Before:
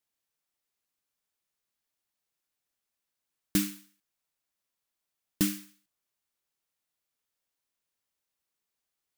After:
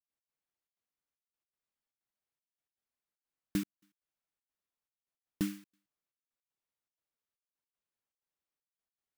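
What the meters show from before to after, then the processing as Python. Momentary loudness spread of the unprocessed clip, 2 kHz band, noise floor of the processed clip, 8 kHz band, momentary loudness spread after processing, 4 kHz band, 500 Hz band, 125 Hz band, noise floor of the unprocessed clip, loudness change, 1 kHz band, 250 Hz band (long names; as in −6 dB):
13 LU, −8.0 dB, below −85 dBFS, −14.5 dB, 9 LU, −11.5 dB, −5.0 dB, −5.0 dB, below −85 dBFS, −8.0 dB, −6.5 dB, −5.0 dB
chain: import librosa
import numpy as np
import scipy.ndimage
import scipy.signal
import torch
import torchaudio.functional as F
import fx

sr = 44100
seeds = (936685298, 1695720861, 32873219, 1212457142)

y = fx.high_shelf(x, sr, hz=3200.0, db=-10.5)
y = fx.step_gate(y, sr, bpm=157, pattern='.x.xxxx.xxxx.', floor_db=-60.0, edge_ms=4.5)
y = y * 10.0 ** (-5.0 / 20.0)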